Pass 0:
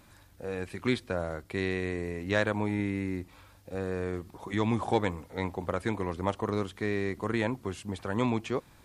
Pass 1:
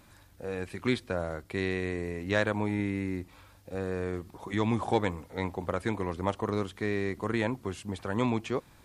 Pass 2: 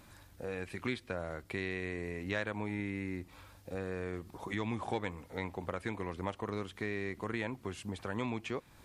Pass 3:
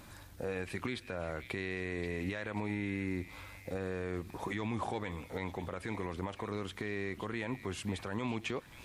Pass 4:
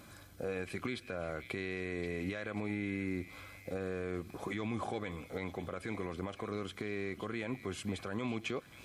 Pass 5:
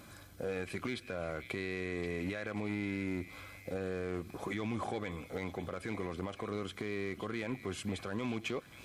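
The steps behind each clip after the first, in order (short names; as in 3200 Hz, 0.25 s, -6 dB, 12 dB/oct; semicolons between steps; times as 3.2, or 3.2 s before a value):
nothing audible
dynamic EQ 2300 Hz, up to +5 dB, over -49 dBFS, Q 1.2; compressor 2:1, threshold -39 dBFS, peak gain reduction 11 dB
limiter -30.5 dBFS, peak gain reduction 11 dB; delay with a stepping band-pass 0.535 s, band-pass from 2800 Hz, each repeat 0.7 oct, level -8 dB; gain +4.5 dB
notch comb 910 Hz
overloaded stage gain 30.5 dB; gain +1 dB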